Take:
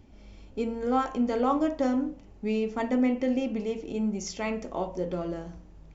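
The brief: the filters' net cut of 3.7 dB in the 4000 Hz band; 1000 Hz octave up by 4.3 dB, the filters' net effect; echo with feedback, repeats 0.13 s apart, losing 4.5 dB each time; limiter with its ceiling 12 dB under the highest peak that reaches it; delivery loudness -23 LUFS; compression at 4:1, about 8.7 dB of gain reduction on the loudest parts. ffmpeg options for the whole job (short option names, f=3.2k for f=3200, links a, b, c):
-af "equalizer=f=1k:t=o:g=6,equalizer=f=4k:t=o:g=-6,acompressor=threshold=-28dB:ratio=4,alimiter=level_in=6.5dB:limit=-24dB:level=0:latency=1,volume=-6.5dB,aecho=1:1:130|260|390|520|650|780|910|1040|1170:0.596|0.357|0.214|0.129|0.0772|0.0463|0.0278|0.0167|0.01,volume=13.5dB"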